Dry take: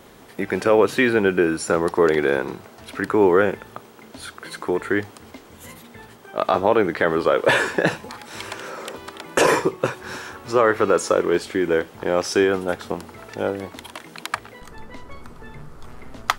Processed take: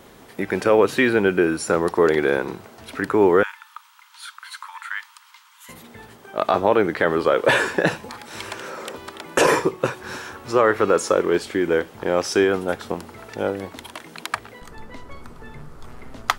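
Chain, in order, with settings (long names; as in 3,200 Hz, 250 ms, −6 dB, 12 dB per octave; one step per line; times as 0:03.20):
0:03.43–0:05.69: Chebyshev high-pass with heavy ripple 900 Hz, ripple 3 dB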